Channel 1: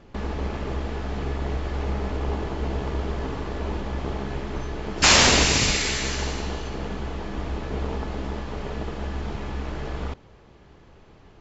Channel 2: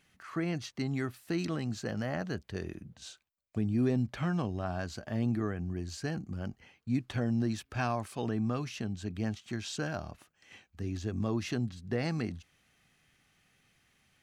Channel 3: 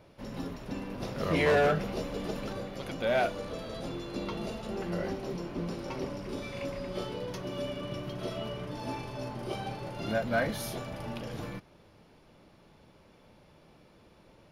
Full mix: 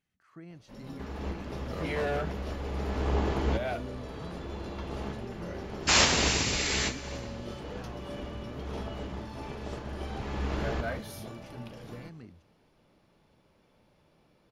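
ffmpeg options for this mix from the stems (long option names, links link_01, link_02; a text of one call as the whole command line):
ffmpeg -i stem1.wav -i stem2.wav -i stem3.wav -filter_complex "[0:a]highpass=42,adelay=850,volume=0.5dB[link_01];[1:a]lowshelf=frequency=430:gain=5.5,volume=-18.5dB,asplit=2[link_02][link_03];[2:a]adelay=500,volume=-7dB[link_04];[link_03]apad=whole_len=540373[link_05];[link_01][link_05]sidechaincompress=threshold=-54dB:ratio=8:attack=21:release=721[link_06];[link_06][link_02][link_04]amix=inputs=3:normalize=0" out.wav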